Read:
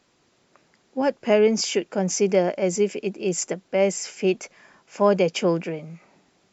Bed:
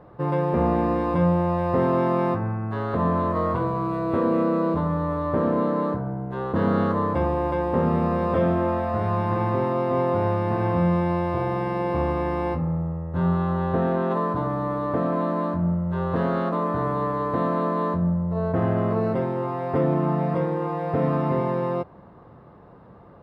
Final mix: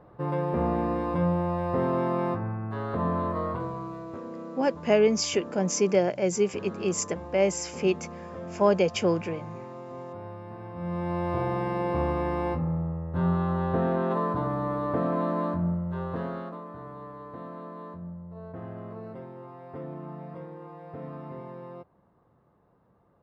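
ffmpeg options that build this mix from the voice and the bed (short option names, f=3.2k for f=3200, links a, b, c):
-filter_complex "[0:a]adelay=3600,volume=-3dB[a];[1:a]volume=9.5dB,afade=t=out:st=3.26:d=0.96:silence=0.237137,afade=t=in:st=10.75:d=0.59:silence=0.188365,afade=t=out:st=15.5:d=1.14:silence=0.199526[b];[a][b]amix=inputs=2:normalize=0"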